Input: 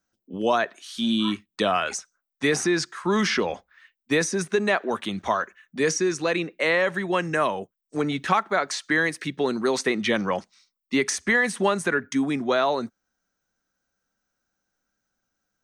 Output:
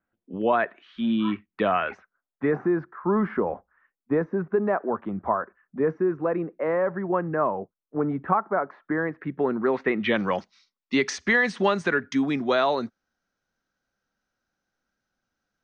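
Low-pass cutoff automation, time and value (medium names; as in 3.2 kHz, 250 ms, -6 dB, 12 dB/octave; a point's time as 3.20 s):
low-pass 24 dB/octave
1.82 s 2.4 kHz
2.69 s 1.3 kHz
8.93 s 1.3 kHz
9.94 s 2.4 kHz
10.35 s 5.3 kHz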